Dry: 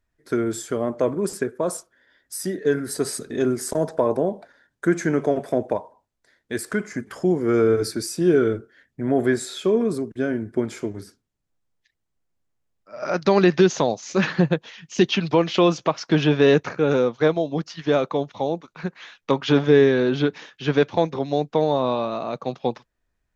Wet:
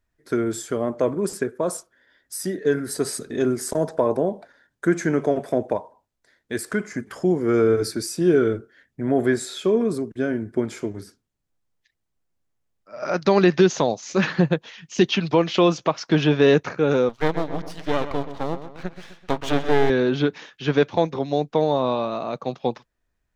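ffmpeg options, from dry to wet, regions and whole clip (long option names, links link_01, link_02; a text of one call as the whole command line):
ffmpeg -i in.wav -filter_complex "[0:a]asettb=1/sr,asplit=3[link_01][link_02][link_03];[link_01]atrim=end=17.094[link_04];[link_02]atrim=start=17.09:end=19.9,asetpts=PTS-STARTPTS,afade=type=in:duration=0.004:curve=qsin,afade=type=out:start_time=2.806:duration=0.004:curve=qsin,aeval=exprs='max(val(0),0)':channel_layout=same,asplit=2[link_05][link_06];[link_06]adelay=128,lowpass=frequency=4000:poles=1,volume=-11.5dB,asplit=2[link_07][link_08];[link_08]adelay=128,lowpass=frequency=4000:poles=1,volume=0.51,asplit=2[link_09][link_10];[link_10]adelay=128,lowpass=frequency=4000:poles=1,volume=0.51,asplit=2[link_11][link_12];[link_12]adelay=128,lowpass=frequency=4000:poles=1,volume=0.51,asplit=2[link_13][link_14];[link_14]adelay=128,lowpass=frequency=4000:poles=1,volume=0.51[link_15];[link_05][link_07][link_09][link_11][link_13][link_15]amix=inputs=6:normalize=0,atrim=end_sample=123921[link_16];[link_03]atrim=start=19.896[link_17];[link_04][link_16]acrossfade=duration=0.004:curve1=hsin:curve2=qsin[link_18];[link_18][link_17]acrossfade=duration=0.004:curve1=qsin:curve2=hsin" out.wav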